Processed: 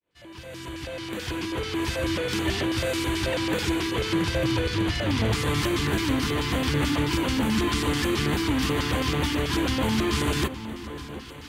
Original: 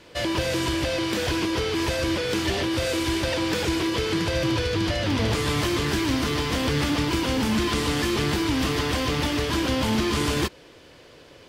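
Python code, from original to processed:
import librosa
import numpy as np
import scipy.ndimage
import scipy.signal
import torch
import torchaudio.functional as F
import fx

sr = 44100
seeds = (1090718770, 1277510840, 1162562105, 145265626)

y = fx.fade_in_head(x, sr, length_s=2.27)
y = fx.echo_alternate(y, sr, ms=731, hz=1200.0, feedback_pct=69, wet_db=-12)
y = fx.filter_lfo_notch(y, sr, shape='square', hz=4.6, low_hz=570.0, high_hz=5200.0, q=0.86)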